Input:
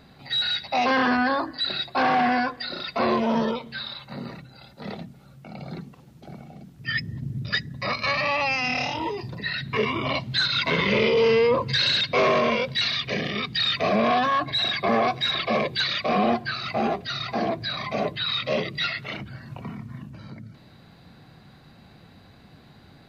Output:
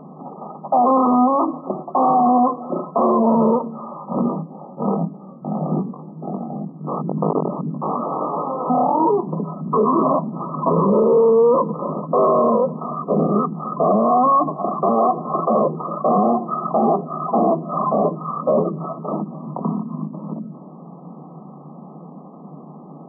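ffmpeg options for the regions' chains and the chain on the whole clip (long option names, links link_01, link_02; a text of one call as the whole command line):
ffmpeg -i in.wav -filter_complex "[0:a]asettb=1/sr,asplit=3[link_01][link_02][link_03];[link_01]atrim=end=3.944[link_04];[link_02]atrim=start=3.94:end=8.7,asetpts=PTS-STARTPTS,afade=type=in:duration=0.004:curve=qsin,afade=type=out:start_time=4.756:duration=0.004:curve=qsin,aeval=exprs='(mod(18.8*val(0)+1,2)-1)/18.8':channel_layout=same,acontrast=22,flanger=delay=19:depth=2.9:speed=1.8[link_05];[link_03]atrim=start=8.696[link_06];[link_04][link_05]acrossfade=duration=0.004:curve1=hsin:curve2=qsin[link_07];[link_07][link_06]acrossfade=duration=0.004:curve1=qsin:curve2=hsin,afftfilt=real='re*between(b*sr/4096,140,1300)':imag='im*between(b*sr/4096,140,1300)':win_size=4096:overlap=0.75,alimiter=level_in=22dB:limit=-1dB:release=50:level=0:latency=1,volume=-7.5dB" out.wav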